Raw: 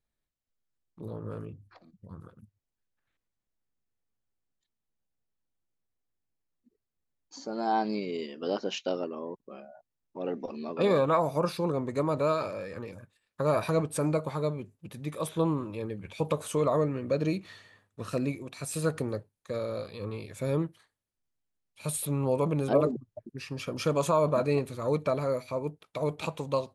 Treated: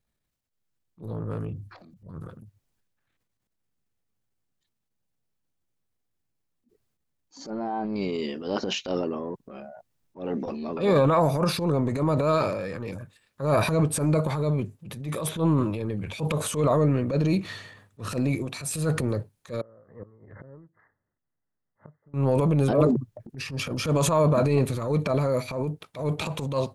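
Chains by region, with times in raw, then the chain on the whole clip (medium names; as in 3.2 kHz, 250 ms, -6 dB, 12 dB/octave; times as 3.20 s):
7.50–7.96 s: low-pass 1.7 kHz + compression, threshold -30 dBFS
19.61–22.14 s: inverted gate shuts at -28 dBFS, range -30 dB + brick-wall FIR low-pass 2.1 kHz + bass shelf 170 Hz -4.5 dB
whole clip: peaking EQ 130 Hz +5 dB 1.5 oct; transient shaper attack -11 dB, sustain +7 dB; trim +4 dB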